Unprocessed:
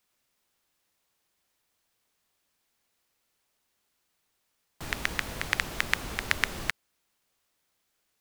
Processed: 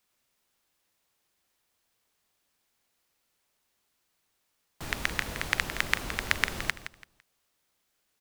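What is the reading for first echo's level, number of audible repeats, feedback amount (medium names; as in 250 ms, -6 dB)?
-12.0 dB, 3, 27%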